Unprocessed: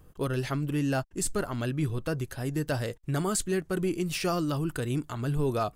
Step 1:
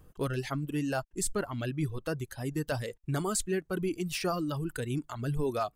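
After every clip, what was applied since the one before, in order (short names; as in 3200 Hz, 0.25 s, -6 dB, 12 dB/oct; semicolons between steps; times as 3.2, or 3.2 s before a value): reverb removal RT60 1.4 s; gain -1.5 dB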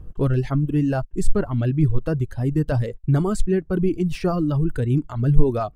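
tilt -3.5 dB/oct; gain +4.5 dB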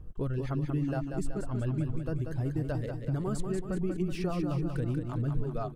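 compressor 4:1, threshold -22 dBFS, peak gain reduction 14 dB; feedback echo 0.188 s, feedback 54%, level -6 dB; gain -7 dB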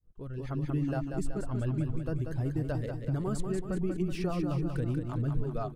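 opening faded in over 0.71 s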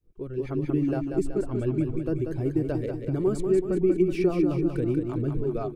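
small resonant body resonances 360/2300 Hz, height 14 dB, ringing for 25 ms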